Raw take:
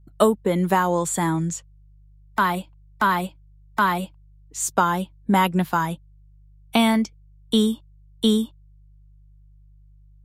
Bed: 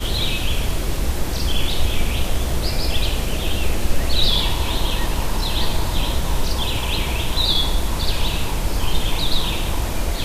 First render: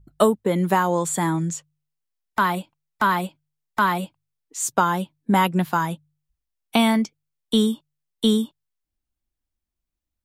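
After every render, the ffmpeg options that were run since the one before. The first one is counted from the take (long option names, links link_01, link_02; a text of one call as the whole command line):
ffmpeg -i in.wav -af "bandreject=frequency=50:width_type=h:width=4,bandreject=frequency=100:width_type=h:width=4,bandreject=frequency=150:width_type=h:width=4" out.wav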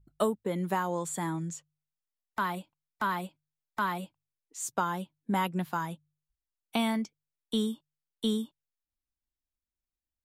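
ffmpeg -i in.wav -af "volume=-10.5dB" out.wav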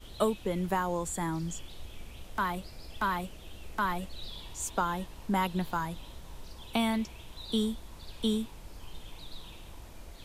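ffmpeg -i in.wav -i bed.wav -filter_complex "[1:a]volume=-25.5dB[link_01];[0:a][link_01]amix=inputs=2:normalize=0" out.wav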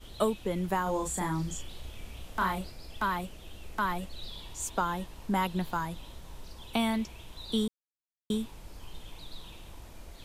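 ffmpeg -i in.wav -filter_complex "[0:a]asettb=1/sr,asplit=3[link_01][link_02][link_03];[link_01]atrim=end=0.834[link_04];[link_02]atrim=start=0.83:end=2.72,asetpts=PTS-STARTPTS,afade=type=in:duration=0.004:curve=qsin,afade=type=out:start_time=1.886:duration=0.004:curve=qsin,asplit=2[link_05][link_06];[link_06]adelay=32,volume=-3dB[link_07];[link_05][link_07]amix=inputs=2:normalize=0,atrim=end_sample=83349[link_08];[link_03]atrim=start=2.716[link_09];[link_04][link_08]acrossfade=duration=0.004:curve1=hsin:curve2=qsin[link_10];[link_10][link_09]acrossfade=duration=0.004:curve1=qsin:curve2=hsin,asplit=3[link_11][link_12][link_13];[link_11]atrim=end=7.68,asetpts=PTS-STARTPTS,afade=type=out:start_time=7.676:duration=0.004:curve=hsin[link_14];[link_12]atrim=start=7.68:end=8.3,asetpts=PTS-STARTPTS,volume=0[link_15];[link_13]atrim=start=8.3,asetpts=PTS-STARTPTS,afade=type=in:duration=0.004:curve=hsin[link_16];[link_14][link_15][link_16]concat=n=3:v=0:a=1" out.wav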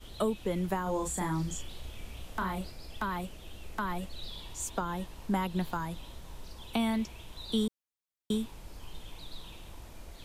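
ffmpeg -i in.wav -filter_complex "[0:a]acrossover=split=480[link_01][link_02];[link_02]acompressor=threshold=-32dB:ratio=6[link_03];[link_01][link_03]amix=inputs=2:normalize=0" out.wav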